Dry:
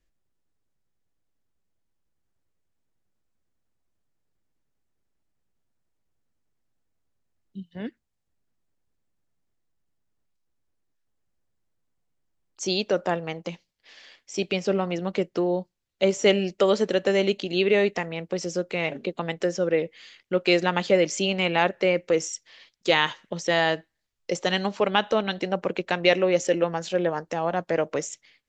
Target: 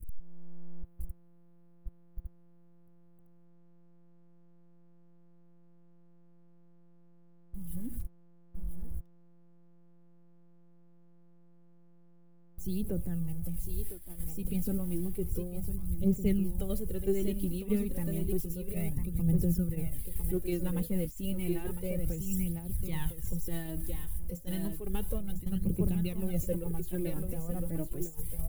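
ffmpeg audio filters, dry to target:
-af "aeval=exprs='val(0)+0.5*0.0211*sgn(val(0))':c=same,firequalizer=gain_entry='entry(160,0);entry(260,-4);entry(590,-24);entry(1400,-28);entry(3900,-26);entry(5900,-26);entry(10000,3)':delay=0.05:min_phase=1,aecho=1:1:1005:0.473,asubboost=boost=12:cutoff=70,asoftclip=type=hard:threshold=-16.5dB,aphaser=in_gain=1:out_gain=1:delay=4.3:decay=0.6:speed=0.31:type=triangular,alimiter=limit=-18.5dB:level=0:latency=1:release=370,agate=range=-33dB:threshold=-26dB:ratio=3:detection=peak,afftfilt=real='re*lt(hypot(re,im),0.794)':imag='im*lt(hypot(re,im),0.794)':win_size=1024:overlap=0.75,volume=2.5dB"

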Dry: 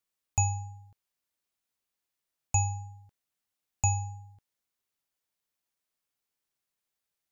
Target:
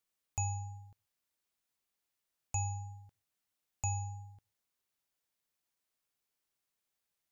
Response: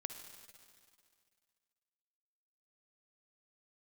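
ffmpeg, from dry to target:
-filter_complex "[0:a]alimiter=limit=-23dB:level=0:latency=1:release=378,asplit=2[a][b];[1:a]atrim=start_sample=2205,atrim=end_sample=6174[c];[b][c]afir=irnorm=-1:irlink=0,volume=-10.5dB[d];[a][d]amix=inputs=2:normalize=0,volume=-2dB"

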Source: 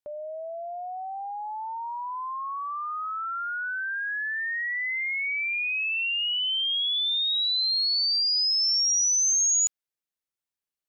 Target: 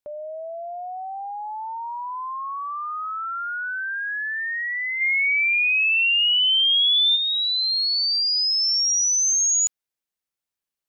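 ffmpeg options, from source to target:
-filter_complex "[0:a]asplit=3[a][b][c];[a]afade=t=out:st=5:d=0.02[d];[b]acontrast=39,afade=t=in:st=5:d=0.02,afade=t=out:st=7.15:d=0.02[e];[c]afade=t=in:st=7.15:d=0.02[f];[d][e][f]amix=inputs=3:normalize=0,volume=2.5dB"

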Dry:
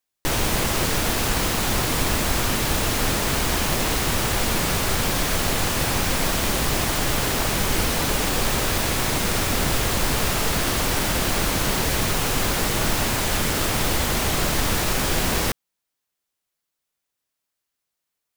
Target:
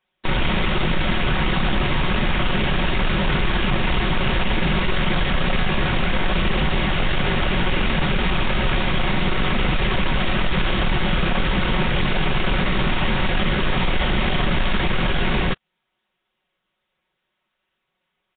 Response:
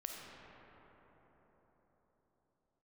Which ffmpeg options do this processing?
-filter_complex "[0:a]acrossover=split=210|1500[a][b][c];[a]acompressor=threshold=-26dB:ratio=4[d];[b]acompressor=threshold=-37dB:ratio=4[e];[c]acompressor=threshold=-29dB:ratio=4[f];[d][e][f]amix=inputs=3:normalize=0,asetrate=42845,aresample=44100,atempo=1.0293,aecho=1:1:5.4:0.78,aeval=exprs='0.282*sin(PI/2*3.16*val(0)/0.282)':c=same,volume=-2.5dB" -ar 8000 -c:a nellymoser

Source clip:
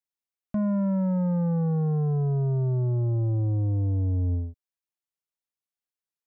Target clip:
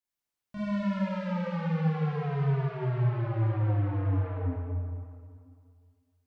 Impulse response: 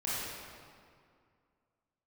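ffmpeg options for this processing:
-filter_complex "[0:a]asoftclip=type=tanh:threshold=-35.5dB[a];[1:a]atrim=start_sample=2205[b];[a][b]afir=irnorm=-1:irlink=0"

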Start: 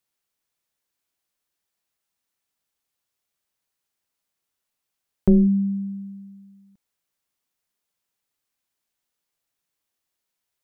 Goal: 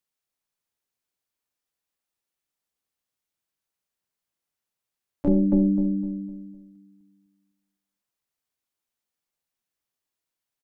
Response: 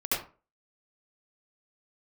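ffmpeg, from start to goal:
-filter_complex "[0:a]asplit=2[a][b];[b]adelay=253,lowpass=f=890:p=1,volume=-3dB,asplit=2[c][d];[d]adelay=253,lowpass=f=890:p=1,volume=0.39,asplit=2[e][f];[f]adelay=253,lowpass=f=890:p=1,volume=0.39,asplit=2[g][h];[h]adelay=253,lowpass=f=890:p=1,volume=0.39,asplit=2[i][j];[j]adelay=253,lowpass=f=890:p=1,volume=0.39[k];[c][e][g][i][k]amix=inputs=5:normalize=0[l];[a][l]amix=inputs=2:normalize=0,asplit=2[m][n];[n]asetrate=66075,aresample=44100,atempo=0.66742,volume=-2dB[o];[m][o]amix=inputs=2:normalize=0,asplit=2[p][q];[q]aecho=0:1:77:0.178[r];[p][r]amix=inputs=2:normalize=0,volume=-7dB"

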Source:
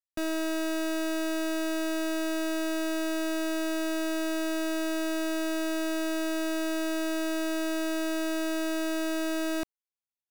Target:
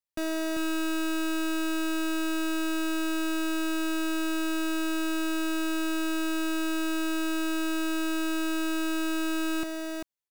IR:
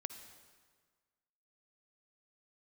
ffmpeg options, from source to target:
-af "aecho=1:1:393:0.596"

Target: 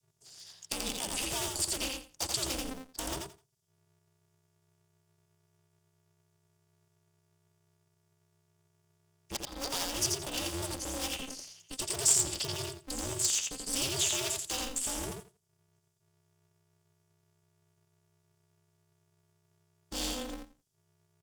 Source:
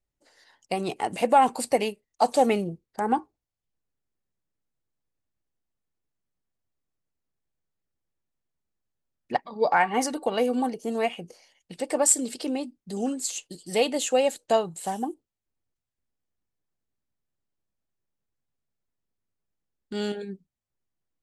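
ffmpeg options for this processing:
-filter_complex "[0:a]aemphasis=mode=reproduction:type=bsi,acrossover=split=350|1700|4400[a][b][c][d];[a]acompressor=threshold=-30dB:ratio=4[e];[b]acompressor=threshold=-32dB:ratio=4[f];[c]acompressor=threshold=-40dB:ratio=4[g];[d]acompressor=threshold=-57dB:ratio=4[h];[e][f][g][h]amix=inputs=4:normalize=0,afreqshift=-32,asoftclip=type=hard:threshold=-29.5dB,asuperstop=centerf=4100:order=4:qfactor=5.3,highshelf=f=5k:g=7,asplit=2[i][j];[j]aecho=0:1:85|170|255:0.668|0.12|0.0217[k];[i][k]amix=inputs=2:normalize=0,aexciter=amount=11.6:drive=5.9:freq=3.1k,aeval=exprs='val(0)*sgn(sin(2*PI*130*n/s))':c=same,volume=-8dB"

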